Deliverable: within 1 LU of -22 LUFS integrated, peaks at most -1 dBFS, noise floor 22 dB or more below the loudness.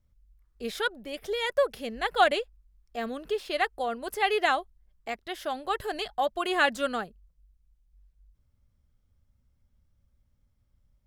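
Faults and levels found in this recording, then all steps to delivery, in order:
loudness -29.0 LUFS; peak level -8.5 dBFS; loudness target -22.0 LUFS
-> trim +7 dB

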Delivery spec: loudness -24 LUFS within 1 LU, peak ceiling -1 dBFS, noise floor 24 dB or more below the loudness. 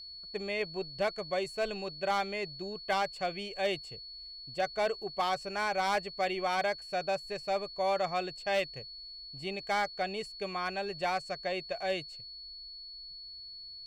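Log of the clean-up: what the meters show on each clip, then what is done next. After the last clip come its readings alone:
clipped samples 0.5%; clipping level -23.0 dBFS; steady tone 4.4 kHz; tone level -44 dBFS; loudness -34.5 LUFS; peak level -23.0 dBFS; loudness target -24.0 LUFS
-> clip repair -23 dBFS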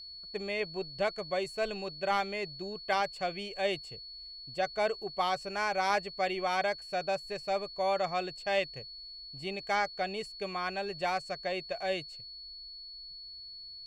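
clipped samples 0.0%; steady tone 4.4 kHz; tone level -44 dBFS
-> band-stop 4.4 kHz, Q 30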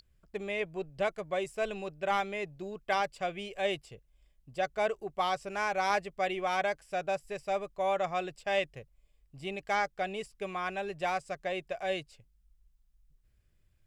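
steady tone not found; loudness -33.5 LUFS; peak level -15.5 dBFS; loudness target -24.0 LUFS
-> trim +9.5 dB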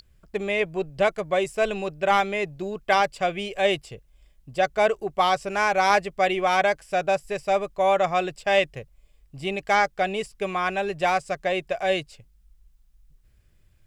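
loudness -24.0 LUFS; peak level -6.0 dBFS; noise floor -59 dBFS

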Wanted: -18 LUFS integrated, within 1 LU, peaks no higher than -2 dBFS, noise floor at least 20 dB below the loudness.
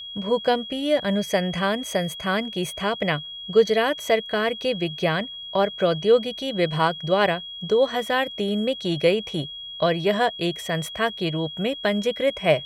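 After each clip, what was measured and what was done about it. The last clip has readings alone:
steady tone 3.3 kHz; tone level -34 dBFS; loudness -23.5 LUFS; peak level -6.0 dBFS; loudness target -18.0 LUFS
-> band-stop 3.3 kHz, Q 30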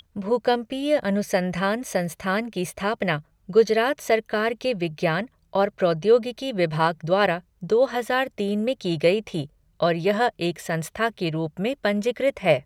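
steady tone not found; loudness -24.0 LUFS; peak level -6.5 dBFS; loudness target -18.0 LUFS
-> trim +6 dB; peak limiter -2 dBFS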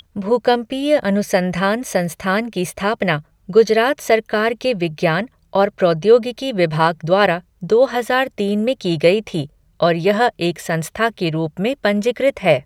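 loudness -18.0 LUFS; peak level -2.0 dBFS; noise floor -58 dBFS

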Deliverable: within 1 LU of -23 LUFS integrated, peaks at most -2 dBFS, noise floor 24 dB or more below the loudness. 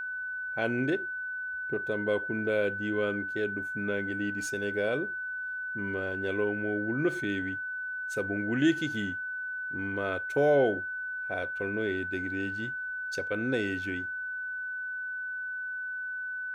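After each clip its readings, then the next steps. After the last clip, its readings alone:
steady tone 1.5 kHz; tone level -33 dBFS; loudness -31.0 LUFS; peak level -14.5 dBFS; loudness target -23.0 LUFS
-> band-stop 1.5 kHz, Q 30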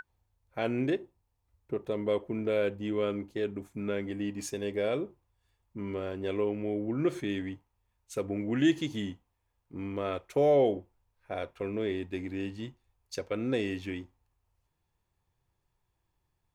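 steady tone not found; loudness -32.5 LUFS; peak level -15.0 dBFS; loudness target -23.0 LUFS
-> trim +9.5 dB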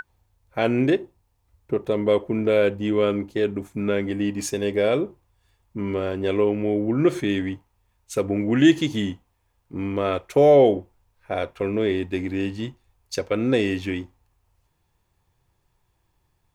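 loudness -23.0 LUFS; peak level -5.5 dBFS; noise floor -70 dBFS

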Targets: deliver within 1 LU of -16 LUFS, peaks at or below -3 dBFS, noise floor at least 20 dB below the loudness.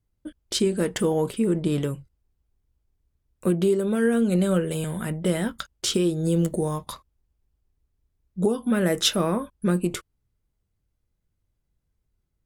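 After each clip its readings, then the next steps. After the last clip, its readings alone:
loudness -24.5 LUFS; peak level -7.0 dBFS; loudness target -16.0 LUFS
-> trim +8.5 dB; peak limiter -3 dBFS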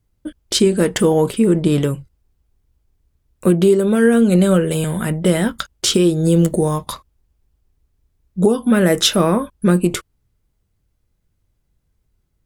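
loudness -16.0 LUFS; peak level -3.0 dBFS; noise floor -68 dBFS

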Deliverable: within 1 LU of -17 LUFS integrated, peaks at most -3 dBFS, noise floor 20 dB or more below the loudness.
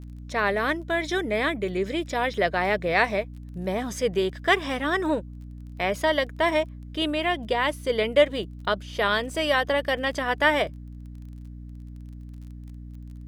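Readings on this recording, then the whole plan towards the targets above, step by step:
tick rate 21 per s; hum 60 Hz; highest harmonic 300 Hz; hum level -37 dBFS; loudness -25.0 LUFS; peak level -6.0 dBFS; loudness target -17.0 LUFS
-> de-click; hum notches 60/120/180/240/300 Hz; trim +8 dB; peak limiter -3 dBFS

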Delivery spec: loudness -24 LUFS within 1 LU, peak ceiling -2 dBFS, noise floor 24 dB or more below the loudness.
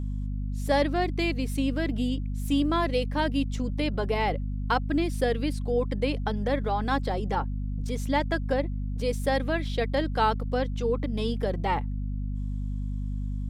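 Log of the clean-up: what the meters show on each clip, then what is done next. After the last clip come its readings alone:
hum 50 Hz; highest harmonic 250 Hz; hum level -28 dBFS; loudness -28.5 LUFS; peak level -11.5 dBFS; loudness target -24.0 LUFS
-> de-hum 50 Hz, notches 5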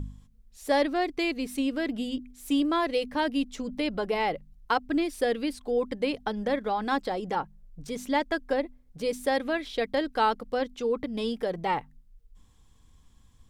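hum not found; loudness -29.0 LUFS; peak level -12.0 dBFS; loudness target -24.0 LUFS
-> trim +5 dB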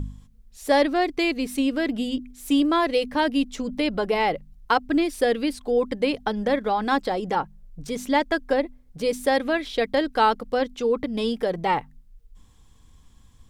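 loudness -24.0 LUFS; peak level -7.0 dBFS; noise floor -54 dBFS

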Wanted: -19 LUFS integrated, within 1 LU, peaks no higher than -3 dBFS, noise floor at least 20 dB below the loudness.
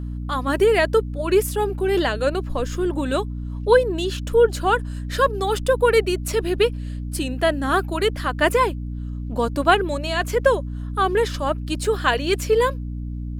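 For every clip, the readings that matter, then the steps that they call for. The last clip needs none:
hum 60 Hz; highest harmonic 300 Hz; hum level -26 dBFS; loudness -21.5 LUFS; peak level -3.0 dBFS; loudness target -19.0 LUFS
-> hum notches 60/120/180/240/300 Hz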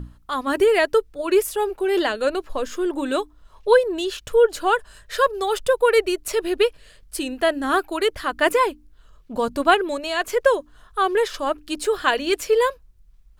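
hum not found; loudness -21.5 LUFS; peak level -2.5 dBFS; loudness target -19.0 LUFS
-> trim +2.5 dB; peak limiter -3 dBFS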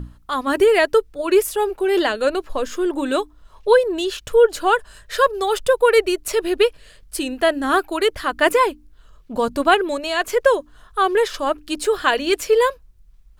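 loudness -19.0 LUFS; peak level -3.0 dBFS; noise floor -50 dBFS

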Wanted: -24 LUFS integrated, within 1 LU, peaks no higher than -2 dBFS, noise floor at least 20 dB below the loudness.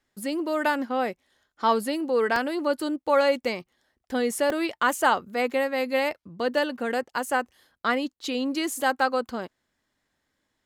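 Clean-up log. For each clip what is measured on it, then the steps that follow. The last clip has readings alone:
dropouts 2; longest dropout 2.6 ms; loudness -26.0 LUFS; peak level -8.5 dBFS; loudness target -24.0 LUFS
-> interpolate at 2.36/4.50 s, 2.6 ms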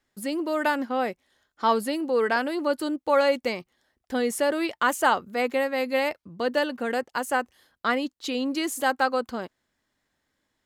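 dropouts 0; loudness -26.0 LUFS; peak level -8.5 dBFS; loudness target -24.0 LUFS
-> trim +2 dB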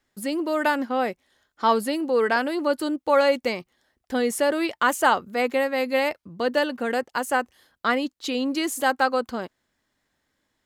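loudness -24.0 LUFS; peak level -6.5 dBFS; noise floor -77 dBFS

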